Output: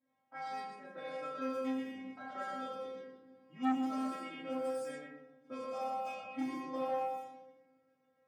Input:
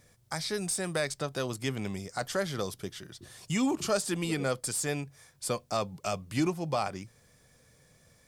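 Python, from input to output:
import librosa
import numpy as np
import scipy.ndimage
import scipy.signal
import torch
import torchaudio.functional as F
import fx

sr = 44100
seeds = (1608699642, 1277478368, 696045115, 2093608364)

y = x + 0.5 * 10.0 ** (-34.5 / 20.0) * np.diff(np.sign(x), prepend=np.sign(x[:1]))
y = fx.high_shelf(y, sr, hz=3900.0, db=-10.5)
y = fx.transient(y, sr, attack_db=6, sustain_db=-2)
y = scipy.signal.sosfilt(scipy.signal.butter(2, 200.0, 'highpass', fs=sr, output='sos'), y)
y = fx.peak_eq(y, sr, hz=7700.0, db=-3.5, octaves=2.3)
y = fx.stiff_resonator(y, sr, f0_hz=260.0, decay_s=0.65, stiffness=0.002)
y = y + 10.0 ** (-4.5 / 20.0) * np.pad(y, (int(121 * sr / 1000.0), 0))[:len(y)]
y = fx.room_shoebox(y, sr, seeds[0], volume_m3=760.0, walls='mixed', distance_m=2.8)
y = fx.env_lowpass(y, sr, base_hz=720.0, full_db=-35.5)
y = fx.transformer_sat(y, sr, knee_hz=810.0)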